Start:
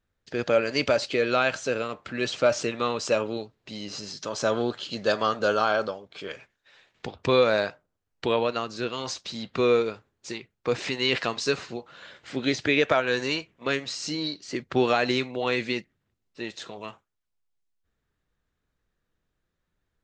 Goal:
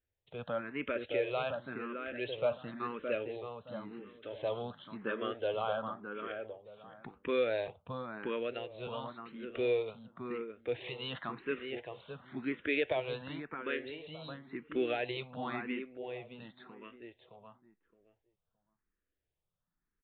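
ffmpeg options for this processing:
ffmpeg -i in.wav -filter_complex "[0:a]aresample=8000,aresample=44100,asplit=2[link_01][link_02];[link_02]adelay=617,lowpass=frequency=1300:poles=1,volume=-4dB,asplit=2[link_03][link_04];[link_04]adelay=617,lowpass=frequency=1300:poles=1,volume=0.23,asplit=2[link_05][link_06];[link_06]adelay=617,lowpass=frequency=1300:poles=1,volume=0.23[link_07];[link_01][link_03][link_05][link_07]amix=inputs=4:normalize=0,asplit=2[link_08][link_09];[link_09]afreqshift=0.94[link_10];[link_08][link_10]amix=inputs=2:normalize=1,volume=-9dB" out.wav

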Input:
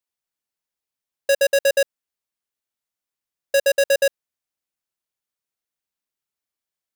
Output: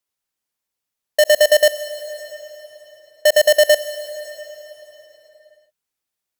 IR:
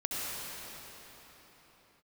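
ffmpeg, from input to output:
-filter_complex "[0:a]asetrate=48000,aresample=44100,asplit=2[link_01][link_02];[link_02]bass=frequency=250:gain=4,treble=frequency=4000:gain=6[link_03];[1:a]atrim=start_sample=2205,lowshelf=frequency=160:gain=-7.5[link_04];[link_03][link_04]afir=irnorm=-1:irlink=0,volume=-18dB[link_05];[link_01][link_05]amix=inputs=2:normalize=0,volume=4dB"

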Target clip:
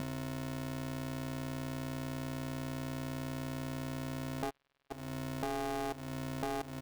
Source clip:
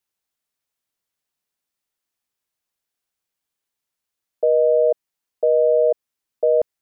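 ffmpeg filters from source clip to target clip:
ffmpeg -i in.wav -filter_complex "[0:a]aeval=exprs='val(0)+0.00891*(sin(2*PI*60*n/s)+sin(2*PI*2*60*n/s)/2+sin(2*PI*3*60*n/s)/3+sin(2*PI*4*60*n/s)/4+sin(2*PI*5*60*n/s)/5)':channel_layout=same,alimiter=limit=-16.5dB:level=0:latency=1:release=97,equalizer=frequency=490:width_type=o:width=2.5:gain=-10,asplit=2[link_01][link_02];[link_02]aecho=0:1:81|162|243:0.0708|0.0304|0.0131[link_03];[link_01][link_03]amix=inputs=2:normalize=0,acompressor=threshold=-51dB:ratio=3,asplit=3[link_04][link_05][link_06];[link_04]afade=type=out:start_time=4.49:duration=0.02[link_07];[link_05]acrusher=bits=5:mix=0:aa=0.5,afade=type=in:start_time=4.49:duration=0.02,afade=type=out:start_time=4.9:duration=0.02[link_08];[link_06]afade=type=in:start_time=4.9:duration=0.02[link_09];[link_07][link_08][link_09]amix=inputs=3:normalize=0,aeval=exprs='val(0)*sgn(sin(2*PI*200*n/s))':channel_layout=same,volume=11dB" out.wav

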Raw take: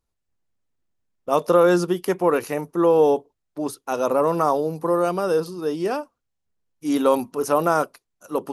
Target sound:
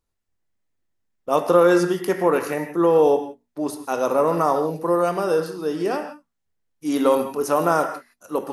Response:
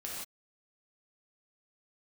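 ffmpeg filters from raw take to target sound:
-filter_complex "[0:a]bandreject=frequency=60:width_type=h:width=6,bandreject=frequency=120:width_type=h:width=6,bandreject=frequency=180:width_type=h:width=6,bandreject=frequency=240:width_type=h:width=6,asplit=2[link_01][link_02];[link_02]equalizer=frequency=1900:width=3:gain=11.5[link_03];[1:a]atrim=start_sample=2205,asetrate=52920,aresample=44100,adelay=23[link_04];[link_03][link_04]afir=irnorm=-1:irlink=0,volume=-8dB[link_05];[link_01][link_05]amix=inputs=2:normalize=0"

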